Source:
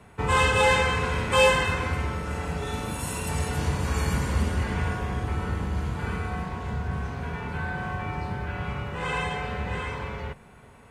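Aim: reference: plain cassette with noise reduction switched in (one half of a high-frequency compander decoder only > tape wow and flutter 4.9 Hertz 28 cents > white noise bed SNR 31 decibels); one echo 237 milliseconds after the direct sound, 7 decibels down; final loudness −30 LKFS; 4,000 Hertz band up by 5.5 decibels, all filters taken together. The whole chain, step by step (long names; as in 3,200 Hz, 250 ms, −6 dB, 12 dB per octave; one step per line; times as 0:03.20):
parametric band 4,000 Hz +7.5 dB
single-tap delay 237 ms −7 dB
one half of a high-frequency compander decoder only
tape wow and flutter 4.9 Hz 28 cents
white noise bed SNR 31 dB
level −5 dB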